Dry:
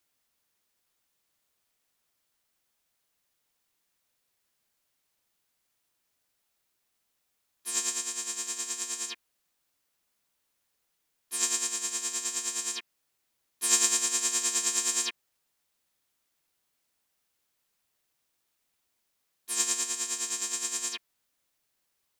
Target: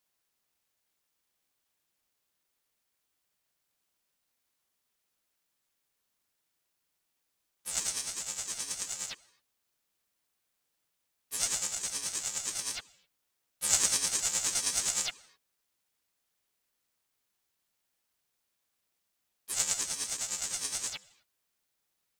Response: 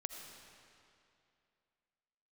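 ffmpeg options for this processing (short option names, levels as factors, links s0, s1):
-filter_complex "[0:a]acrusher=bits=6:mode=log:mix=0:aa=0.000001,asplit=2[s0][s1];[1:a]atrim=start_sample=2205,afade=t=out:st=0.32:d=0.01,atrim=end_sample=14553[s2];[s1][s2]afir=irnorm=-1:irlink=0,volume=0.282[s3];[s0][s3]amix=inputs=2:normalize=0,aeval=exprs='val(0)*sin(2*PI*750*n/s+750*0.8/1.5*sin(2*PI*1.5*n/s))':c=same,volume=0.841"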